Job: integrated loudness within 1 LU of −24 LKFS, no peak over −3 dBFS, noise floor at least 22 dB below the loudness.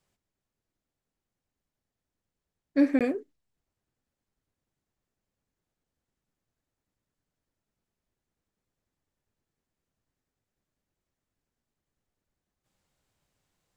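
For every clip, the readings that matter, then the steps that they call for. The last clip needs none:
number of dropouts 1; longest dropout 17 ms; integrated loudness −26.5 LKFS; sample peak −12.0 dBFS; target loudness −24.0 LKFS
→ repair the gap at 0:02.99, 17 ms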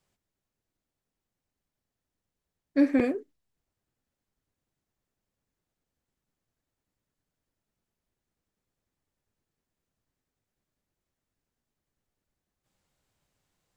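number of dropouts 0; integrated loudness −26.0 LKFS; sample peak −11.0 dBFS; target loudness −24.0 LKFS
→ level +2 dB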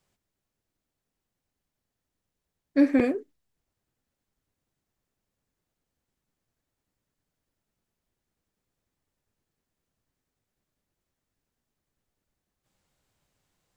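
integrated loudness −24.0 LKFS; sample peak −9.0 dBFS; background noise floor −85 dBFS

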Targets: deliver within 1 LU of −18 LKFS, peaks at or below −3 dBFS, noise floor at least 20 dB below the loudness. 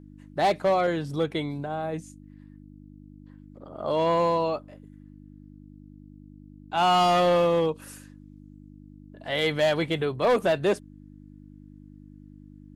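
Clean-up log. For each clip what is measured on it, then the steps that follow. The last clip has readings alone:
share of clipped samples 0.5%; peaks flattened at −16.0 dBFS; mains hum 50 Hz; hum harmonics up to 300 Hz; level of the hum −45 dBFS; integrated loudness −25.0 LKFS; sample peak −16.0 dBFS; target loudness −18.0 LKFS
→ clipped peaks rebuilt −16 dBFS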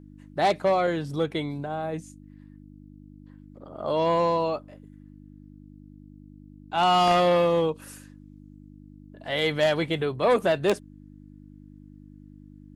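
share of clipped samples 0.0%; mains hum 50 Hz; hum harmonics up to 300 Hz; level of the hum −45 dBFS
→ hum removal 50 Hz, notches 6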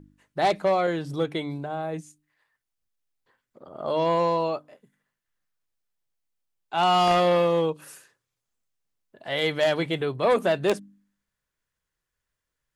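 mains hum none found; integrated loudness −24.5 LKFS; sample peak −7.5 dBFS; target loudness −18.0 LKFS
→ level +6.5 dB
brickwall limiter −3 dBFS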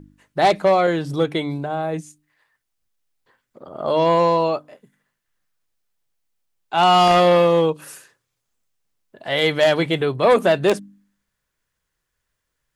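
integrated loudness −18.0 LKFS; sample peak −3.0 dBFS; background noise floor −78 dBFS

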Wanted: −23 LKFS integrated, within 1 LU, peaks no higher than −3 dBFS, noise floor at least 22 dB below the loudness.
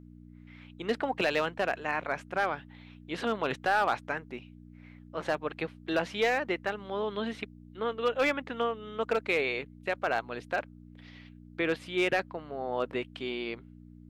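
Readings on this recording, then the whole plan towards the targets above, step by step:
share of clipped samples 0.2%; peaks flattened at −18.5 dBFS; mains hum 60 Hz; hum harmonics up to 300 Hz; level of the hum −48 dBFS; integrated loudness −31.5 LKFS; sample peak −18.5 dBFS; target loudness −23.0 LKFS
→ clipped peaks rebuilt −18.5 dBFS
hum removal 60 Hz, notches 5
level +8.5 dB

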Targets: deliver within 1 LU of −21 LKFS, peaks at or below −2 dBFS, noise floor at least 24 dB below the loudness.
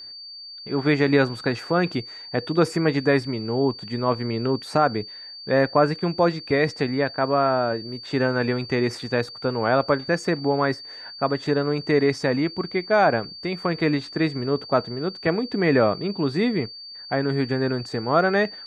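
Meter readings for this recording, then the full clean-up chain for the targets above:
interfering tone 4,600 Hz; level of the tone −37 dBFS; integrated loudness −23.0 LKFS; sample peak −5.5 dBFS; target loudness −21.0 LKFS
→ notch filter 4,600 Hz, Q 30
level +2 dB

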